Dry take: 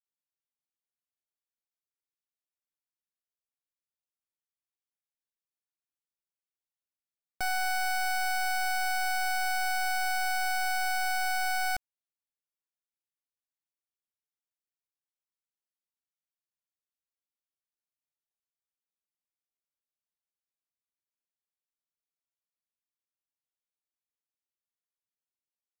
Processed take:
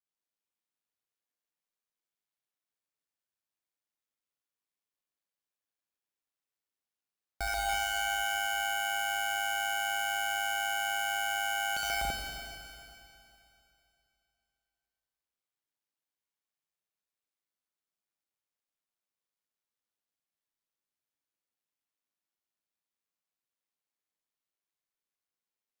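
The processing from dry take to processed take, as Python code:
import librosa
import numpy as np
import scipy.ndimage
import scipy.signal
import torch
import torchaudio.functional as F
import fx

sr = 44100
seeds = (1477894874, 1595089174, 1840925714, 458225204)

y = fx.highpass(x, sr, hz=93.0, slope=6)
y = fx.high_shelf(y, sr, hz=5100.0, db=-5.0)
y = fx.echo_multitap(y, sr, ms=(65, 77, 134, 247, 285, 336), db=(-8.5, -17.0, -3.0, -8.0, -9.0, -10.5))
y = fx.leveller(y, sr, passes=3)
y = np.clip(10.0 ** (36.0 / 20.0) * y, -1.0, 1.0) / 10.0 ** (36.0 / 20.0)
y = y * np.sin(2.0 * np.pi * 52.0 * np.arange(len(y)) / sr)
y = fx.rev_schroeder(y, sr, rt60_s=2.8, comb_ms=31, drr_db=1.0)
y = y * 10.0 ** (6.5 / 20.0)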